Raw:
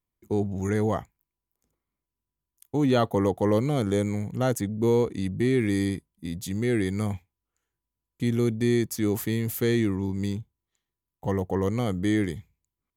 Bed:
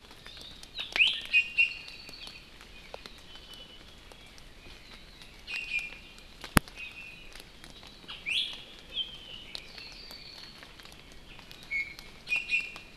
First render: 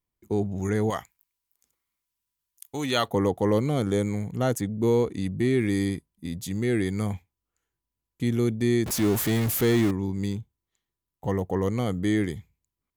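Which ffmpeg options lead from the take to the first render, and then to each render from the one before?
-filter_complex "[0:a]asettb=1/sr,asplit=3[s0][s1][s2];[s0]atrim=end=0.904[s3];[s1]atrim=start=0.9:end=3.08,asetpts=PTS-STARTPTS,afade=t=in:d=0.004:c=qsin,afade=t=out:st=2.176:d=0.004:c=qsin,tiltshelf=f=970:g=-9[s4];[s2]atrim=start=3.076[s5];[s3][s4]acrossfade=d=0.004:c1=hsin:c2=qsin[s6];[s6][s5]acrossfade=d=0.004:c1=qsin:c2=hsin,asettb=1/sr,asplit=3[s7][s8][s9];[s7]atrim=end=8.864[s10];[s8]atrim=start=8.86:end=9.91,asetpts=PTS-STARTPTS,afade=t=in:d=0.004:c=qsin,afade=t=out:st=1.046:d=0.004:c=qsin,aeval=exprs='val(0)+0.5*0.0473*sgn(val(0))':c=same[s11];[s9]atrim=start=9.906[s12];[s10][s11]acrossfade=d=0.004:c1=hsin:c2=qsin[s13];[s13][s12]acrossfade=d=0.004:c1=qsin:c2=hsin"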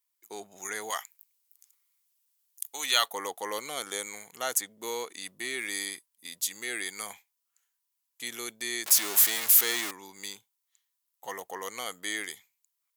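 -af "highpass=1000,highshelf=f=4000:g=11"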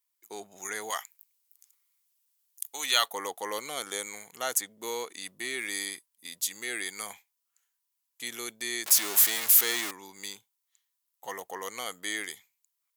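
-af anull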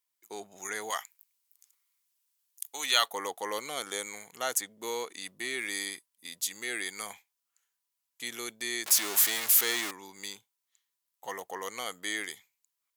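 -af "highshelf=f=9500:g=-4.5"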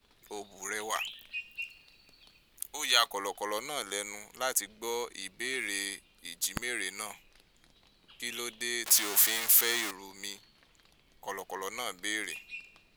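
-filter_complex "[1:a]volume=0.188[s0];[0:a][s0]amix=inputs=2:normalize=0"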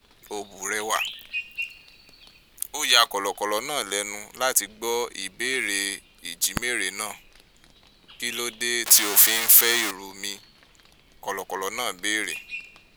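-af "volume=2.66,alimiter=limit=0.794:level=0:latency=1"

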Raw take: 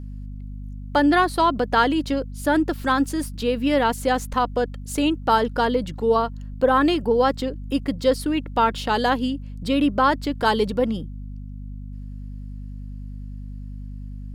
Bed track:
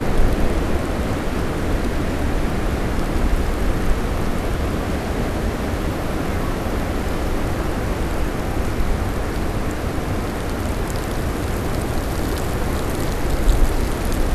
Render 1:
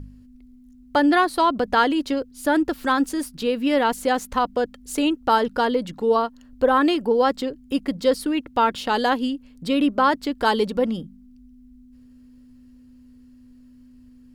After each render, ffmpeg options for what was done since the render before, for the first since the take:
-af "bandreject=f=50:t=h:w=4,bandreject=f=100:t=h:w=4,bandreject=f=150:t=h:w=4,bandreject=f=200:t=h:w=4"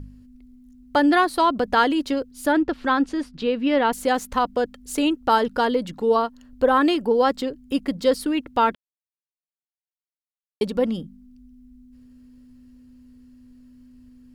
-filter_complex "[0:a]asettb=1/sr,asplit=3[s0][s1][s2];[s0]atrim=end=2.524[s3];[s1]atrim=start=2.52:end=3.93,asetpts=PTS-STARTPTS,afade=t=in:d=0.004:c=qsin,afade=t=out:st=1.406:d=0.004:c=qsin,lowpass=3900[s4];[s2]atrim=start=3.926[s5];[s3][s4]acrossfade=d=0.004:c1=hsin:c2=qsin[s6];[s6][s5]acrossfade=d=0.004:c1=qsin:c2=hsin,asplit=3[s7][s8][s9];[s7]atrim=end=8.75,asetpts=PTS-STARTPTS,afade=t=out:st=8.746:d=0.004:c=hsin[s10];[s8]atrim=start=8.75:end=10.61,asetpts=PTS-STARTPTS,volume=0[s11];[s9]atrim=start=10.61,asetpts=PTS-STARTPTS,afade=t=in:d=0.004:c=hsin[s12];[s10][s11][s12]concat=n=3:v=0:a=1"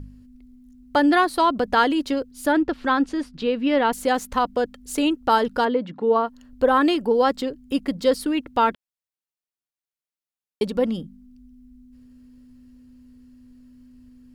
-filter_complex "[0:a]asplit=3[s0][s1][s2];[s0]afade=t=out:st=5.64:d=0.02[s3];[s1]highpass=130,lowpass=2500,afade=t=in:st=5.64:d=0.02,afade=t=out:st=6.26:d=0.02[s4];[s2]afade=t=in:st=6.26:d=0.02[s5];[s3][s4][s5]amix=inputs=3:normalize=0"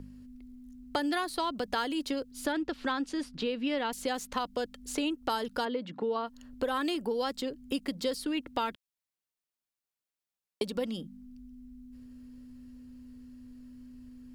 -filter_complex "[0:a]acrossover=split=180|2600|6600[s0][s1][s2][s3];[s0]acompressor=threshold=0.00282:ratio=4[s4];[s1]acompressor=threshold=0.0251:ratio=4[s5];[s2]acompressor=threshold=0.01:ratio=4[s6];[s3]acompressor=threshold=0.00447:ratio=4[s7];[s4][s5][s6][s7]amix=inputs=4:normalize=0"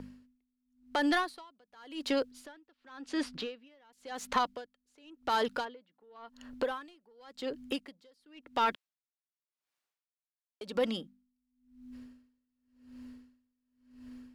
-filter_complex "[0:a]asplit=2[s0][s1];[s1]highpass=f=720:p=1,volume=6.31,asoftclip=type=tanh:threshold=0.178[s2];[s0][s2]amix=inputs=2:normalize=0,lowpass=f=2800:p=1,volume=0.501,aeval=exprs='val(0)*pow(10,-36*(0.5-0.5*cos(2*PI*0.92*n/s))/20)':c=same"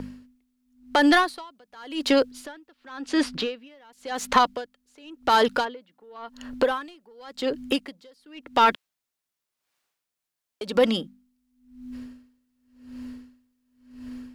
-af "volume=3.35"

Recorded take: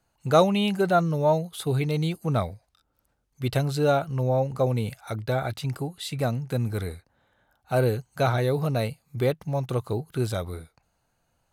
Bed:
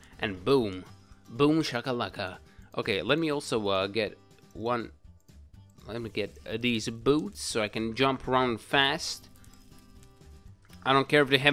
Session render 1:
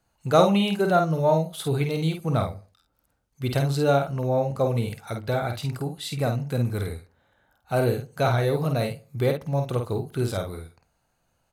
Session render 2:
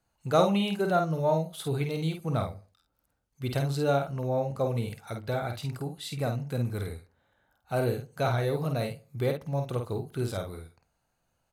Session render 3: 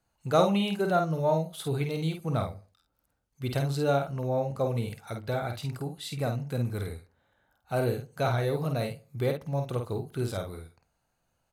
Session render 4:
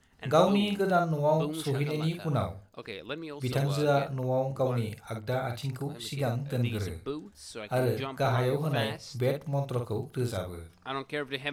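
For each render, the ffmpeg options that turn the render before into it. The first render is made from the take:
-filter_complex "[0:a]asplit=2[s0][s1];[s1]adelay=50,volume=0.531[s2];[s0][s2]amix=inputs=2:normalize=0,asplit=2[s3][s4];[s4]adelay=70,lowpass=f=1700:p=1,volume=0.112,asplit=2[s5][s6];[s6]adelay=70,lowpass=f=1700:p=1,volume=0.38,asplit=2[s7][s8];[s8]adelay=70,lowpass=f=1700:p=1,volume=0.38[s9];[s3][s5][s7][s9]amix=inputs=4:normalize=0"
-af "volume=0.562"
-af anull
-filter_complex "[1:a]volume=0.266[s0];[0:a][s0]amix=inputs=2:normalize=0"

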